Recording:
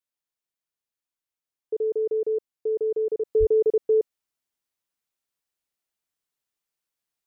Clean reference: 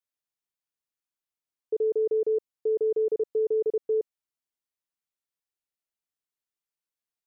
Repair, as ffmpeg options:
-filter_complex "[0:a]asplit=3[s0][s1][s2];[s0]afade=t=out:st=3.39:d=0.02[s3];[s1]highpass=f=140:w=0.5412,highpass=f=140:w=1.3066,afade=t=in:st=3.39:d=0.02,afade=t=out:st=3.51:d=0.02[s4];[s2]afade=t=in:st=3.51:d=0.02[s5];[s3][s4][s5]amix=inputs=3:normalize=0,asetnsamples=n=441:p=0,asendcmd='3.25 volume volume -5.5dB',volume=1"

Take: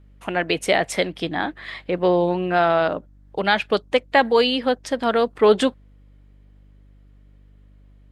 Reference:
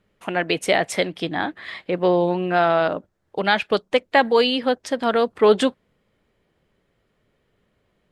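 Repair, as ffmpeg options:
-af "bandreject=f=49.5:t=h:w=4,bandreject=f=99:t=h:w=4,bandreject=f=148.5:t=h:w=4,bandreject=f=198:t=h:w=4,bandreject=f=247.5:t=h:w=4,bandreject=f=297:t=h:w=4"

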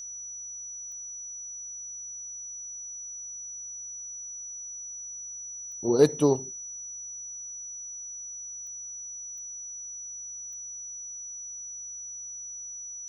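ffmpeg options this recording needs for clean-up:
-af "adeclick=t=4,bandreject=f=49.7:t=h:w=4,bandreject=f=99.4:t=h:w=4,bandreject=f=149.1:t=h:w=4,bandreject=f=198.8:t=h:w=4,bandreject=f=248.5:t=h:w=4,bandreject=f=5900:w=30,agate=range=0.0891:threshold=0.0251"

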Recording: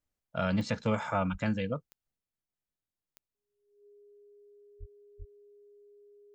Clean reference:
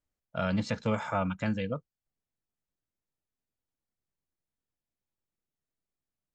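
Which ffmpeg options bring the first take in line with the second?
-filter_complex "[0:a]adeclick=t=4,bandreject=f=410:w=30,asplit=3[s0][s1][s2];[s0]afade=t=out:st=1.31:d=0.02[s3];[s1]highpass=f=140:w=0.5412,highpass=f=140:w=1.3066,afade=t=in:st=1.31:d=0.02,afade=t=out:st=1.43:d=0.02[s4];[s2]afade=t=in:st=1.43:d=0.02[s5];[s3][s4][s5]amix=inputs=3:normalize=0,asplit=3[s6][s7][s8];[s6]afade=t=out:st=4.79:d=0.02[s9];[s7]highpass=f=140:w=0.5412,highpass=f=140:w=1.3066,afade=t=in:st=4.79:d=0.02,afade=t=out:st=4.91:d=0.02[s10];[s8]afade=t=in:st=4.91:d=0.02[s11];[s9][s10][s11]amix=inputs=3:normalize=0,asplit=3[s12][s13][s14];[s12]afade=t=out:st=5.18:d=0.02[s15];[s13]highpass=f=140:w=0.5412,highpass=f=140:w=1.3066,afade=t=in:st=5.18:d=0.02,afade=t=out:st=5.3:d=0.02[s16];[s14]afade=t=in:st=5.3:d=0.02[s17];[s15][s16][s17]amix=inputs=3:normalize=0,asetnsamples=n=441:p=0,asendcmd='2.16 volume volume 4.5dB',volume=1"

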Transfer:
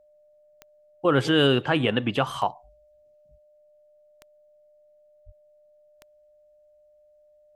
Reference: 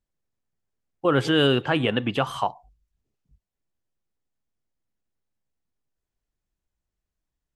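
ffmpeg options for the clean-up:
-filter_complex "[0:a]adeclick=t=4,bandreject=f=600:w=30,asplit=3[s0][s1][s2];[s0]afade=t=out:st=5.25:d=0.02[s3];[s1]highpass=f=140:w=0.5412,highpass=f=140:w=1.3066,afade=t=in:st=5.25:d=0.02,afade=t=out:st=5.37:d=0.02[s4];[s2]afade=t=in:st=5.37:d=0.02[s5];[s3][s4][s5]amix=inputs=3:normalize=0"

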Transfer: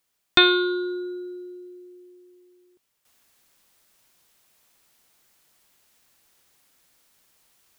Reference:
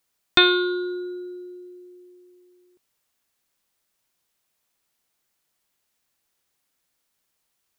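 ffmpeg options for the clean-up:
-af "agate=range=0.0891:threshold=0.00158,asetnsamples=n=441:p=0,asendcmd='3.05 volume volume -11.5dB',volume=1"

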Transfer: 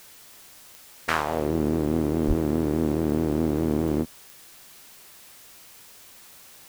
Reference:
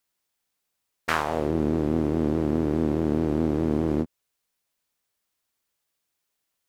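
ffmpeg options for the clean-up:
-filter_complex "[0:a]adeclick=t=4,asplit=3[s0][s1][s2];[s0]afade=t=out:st=2.27:d=0.02[s3];[s1]highpass=f=140:w=0.5412,highpass=f=140:w=1.3066,afade=t=in:st=2.27:d=0.02,afade=t=out:st=2.39:d=0.02[s4];[s2]afade=t=in:st=2.39:d=0.02[s5];[s3][s4][s5]amix=inputs=3:normalize=0,afftdn=nr=30:nf=-49"

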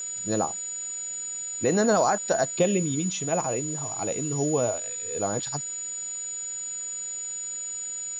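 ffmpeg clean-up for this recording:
-af "bandreject=f=6900:w=30,afwtdn=0.004"

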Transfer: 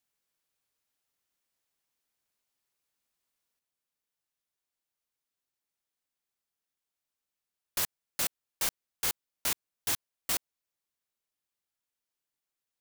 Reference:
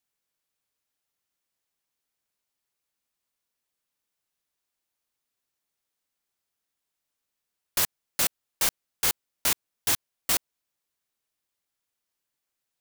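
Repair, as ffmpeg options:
-af "asetnsamples=n=441:p=0,asendcmd='3.59 volume volume 6dB',volume=1"

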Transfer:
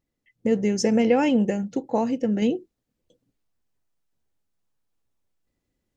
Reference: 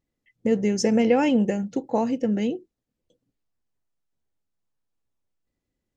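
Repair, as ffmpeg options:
-af "asetnsamples=n=441:p=0,asendcmd='2.42 volume volume -3.5dB',volume=1"

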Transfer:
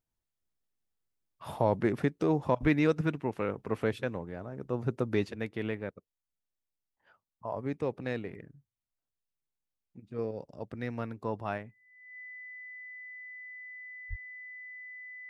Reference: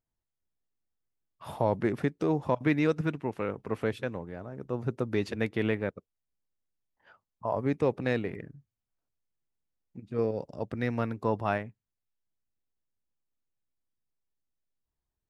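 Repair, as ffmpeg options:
-filter_complex "[0:a]bandreject=f=2000:w=30,asplit=3[s0][s1][s2];[s0]afade=t=out:st=2.61:d=0.02[s3];[s1]highpass=f=140:w=0.5412,highpass=f=140:w=1.3066,afade=t=in:st=2.61:d=0.02,afade=t=out:st=2.73:d=0.02[s4];[s2]afade=t=in:st=2.73:d=0.02[s5];[s3][s4][s5]amix=inputs=3:normalize=0,asplit=3[s6][s7][s8];[s6]afade=t=out:st=14.09:d=0.02[s9];[s7]highpass=f=140:w=0.5412,highpass=f=140:w=1.3066,afade=t=in:st=14.09:d=0.02,afade=t=out:st=14.21:d=0.02[s10];[s8]afade=t=in:st=14.21:d=0.02[s11];[s9][s10][s11]amix=inputs=3:normalize=0,asetnsamples=n=441:p=0,asendcmd='5.25 volume volume 6dB',volume=1"

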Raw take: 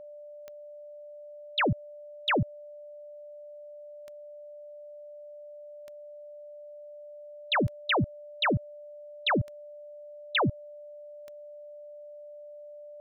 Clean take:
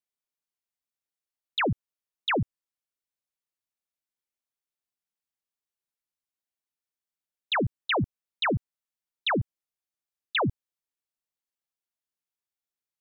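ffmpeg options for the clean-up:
-af "adeclick=t=4,bandreject=f=590:w=30"

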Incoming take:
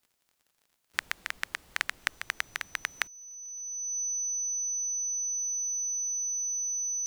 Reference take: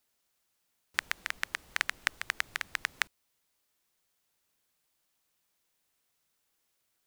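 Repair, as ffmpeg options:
-af "adeclick=t=4,bandreject=f=6000:w=30,asetnsamples=n=441:p=0,asendcmd='5.38 volume volume -9dB',volume=1"

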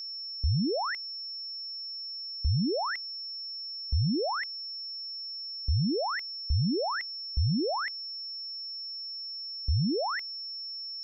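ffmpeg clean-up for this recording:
-af "bandreject=f=5400:w=30"

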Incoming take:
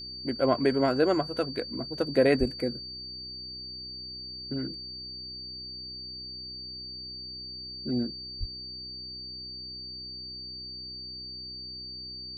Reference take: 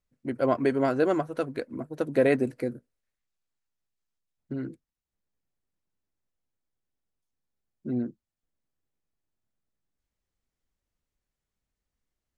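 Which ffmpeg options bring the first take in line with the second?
-filter_complex "[0:a]bandreject=f=63.4:t=h:w=4,bandreject=f=126.8:t=h:w=4,bandreject=f=190.2:t=h:w=4,bandreject=f=253.6:t=h:w=4,bandreject=f=317:t=h:w=4,bandreject=f=380.4:t=h:w=4,bandreject=f=4600:w=30,asplit=3[s0][s1][s2];[s0]afade=t=out:st=2.39:d=0.02[s3];[s1]highpass=f=140:w=0.5412,highpass=f=140:w=1.3066,afade=t=in:st=2.39:d=0.02,afade=t=out:st=2.51:d=0.02[s4];[s2]afade=t=in:st=2.51:d=0.02[s5];[s3][s4][s5]amix=inputs=3:normalize=0,asplit=3[s6][s7][s8];[s6]afade=t=out:st=8.39:d=0.02[s9];[s7]highpass=f=140:w=0.5412,highpass=f=140:w=1.3066,afade=t=in:st=8.39:d=0.02,afade=t=out:st=8.51:d=0.02[s10];[s8]afade=t=in:st=8.51:d=0.02[s11];[s9][s10][s11]amix=inputs=3:normalize=0"

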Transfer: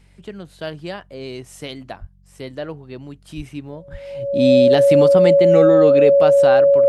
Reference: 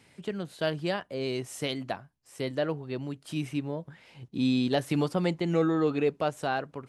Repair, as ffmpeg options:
-filter_complex "[0:a]bandreject=f=46.9:t=h:w=4,bandreject=f=93.8:t=h:w=4,bandreject=f=140.7:t=h:w=4,bandreject=f=187.6:t=h:w=4,bandreject=f=560:w=30,asplit=3[s0][s1][s2];[s0]afade=t=out:st=2:d=0.02[s3];[s1]highpass=f=140:w=0.5412,highpass=f=140:w=1.3066,afade=t=in:st=2:d=0.02,afade=t=out:st=2.12:d=0.02[s4];[s2]afade=t=in:st=2.12:d=0.02[s5];[s3][s4][s5]amix=inputs=3:normalize=0,asplit=3[s6][s7][s8];[s6]afade=t=out:st=3.36:d=0.02[s9];[s7]highpass=f=140:w=0.5412,highpass=f=140:w=1.3066,afade=t=in:st=3.36:d=0.02,afade=t=out:st=3.48:d=0.02[s10];[s8]afade=t=in:st=3.48:d=0.02[s11];[s9][s10][s11]amix=inputs=3:normalize=0,asplit=3[s12][s13][s14];[s12]afade=t=out:st=3.91:d=0.02[s15];[s13]highpass=f=140:w=0.5412,highpass=f=140:w=1.3066,afade=t=in:st=3.91:d=0.02,afade=t=out:st=4.03:d=0.02[s16];[s14]afade=t=in:st=4.03:d=0.02[s17];[s15][s16][s17]amix=inputs=3:normalize=0,asetnsamples=n=441:p=0,asendcmd='3.91 volume volume -8.5dB',volume=1"

